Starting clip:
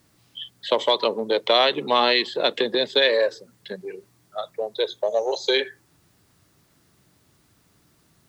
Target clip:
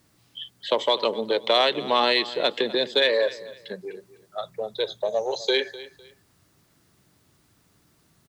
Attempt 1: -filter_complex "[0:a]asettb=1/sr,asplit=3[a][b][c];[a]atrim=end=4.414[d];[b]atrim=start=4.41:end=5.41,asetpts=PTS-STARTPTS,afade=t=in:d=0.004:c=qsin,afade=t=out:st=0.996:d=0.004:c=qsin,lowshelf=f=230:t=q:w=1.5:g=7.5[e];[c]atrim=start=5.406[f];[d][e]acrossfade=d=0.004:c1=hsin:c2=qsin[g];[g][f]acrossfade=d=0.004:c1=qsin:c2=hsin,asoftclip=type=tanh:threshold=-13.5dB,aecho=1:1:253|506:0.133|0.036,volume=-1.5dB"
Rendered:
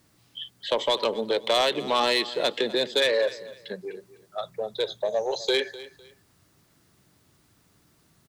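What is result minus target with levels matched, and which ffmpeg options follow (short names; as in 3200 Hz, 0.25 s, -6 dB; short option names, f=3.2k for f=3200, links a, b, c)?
soft clip: distortion +16 dB
-filter_complex "[0:a]asettb=1/sr,asplit=3[a][b][c];[a]atrim=end=4.414[d];[b]atrim=start=4.41:end=5.41,asetpts=PTS-STARTPTS,afade=t=in:d=0.004:c=qsin,afade=t=out:st=0.996:d=0.004:c=qsin,lowshelf=f=230:t=q:w=1.5:g=7.5[e];[c]atrim=start=5.406[f];[d][e]acrossfade=d=0.004:c1=hsin:c2=qsin[g];[g][f]acrossfade=d=0.004:c1=qsin:c2=hsin,asoftclip=type=tanh:threshold=-3dB,aecho=1:1:253|506:0.133|0.036,volume=-1.5dB"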